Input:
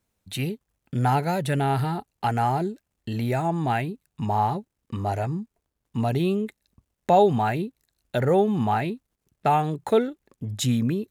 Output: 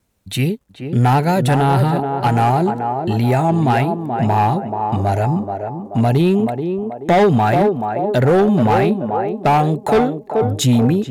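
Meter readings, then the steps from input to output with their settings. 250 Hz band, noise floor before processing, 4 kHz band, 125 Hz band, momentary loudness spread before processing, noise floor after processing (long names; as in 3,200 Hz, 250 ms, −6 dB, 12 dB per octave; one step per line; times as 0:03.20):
+10.0 dB, −81 dBFS, +7.5 dB, +10.0 dB, 14 LU, −40 dBFS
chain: harmonic generator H 5 −20 dB, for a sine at −7.5 dBFS
feedback echo with a band-pass in the loop 431 ms, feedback 55%, band-pass 530 Hz, level −4 dB
gain into a clipping stage and back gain 15 dB
low-shelf EQ 490 Hz +3 dB
tape wow and flutter 29 cents
level +4.5 dB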